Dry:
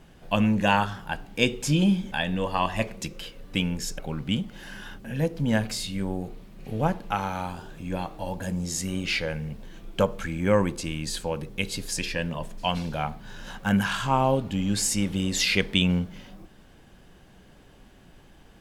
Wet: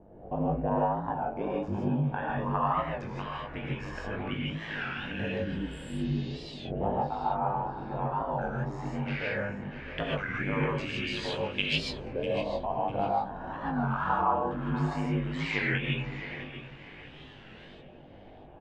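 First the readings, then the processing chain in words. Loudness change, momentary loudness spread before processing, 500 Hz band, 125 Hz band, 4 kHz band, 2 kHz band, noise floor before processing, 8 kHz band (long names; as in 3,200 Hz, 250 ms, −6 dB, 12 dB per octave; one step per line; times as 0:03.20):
−4.5 dB, 13 LU, −3.0 dB, −4.0 dB, −8.0 dB, −3.5 dB, −53 dBFS, −24.0 dB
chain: downward compressor 3 to 1, threshold −33 dBFS, peak gain reduction 13 dB
auto-filter low-pass saw up 0.17 Hz 580–3,500 Hz
ring modulation 50 Hz
double-tracking delay 20 ms −5.5 dB
tape delay 649 ms, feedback 37%, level −11.5 dB, low-pass 5,500 Hz
healed spectral selection 0:05.48–0:06.42, 430–7,300 Hz both
low-shelf EQ 88 Hz −6.5 dB
reverb whose tail is shaped and stops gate 180 ms rising, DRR −4 dB
wow of a warped record 33 1/3 rpm, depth 160 cents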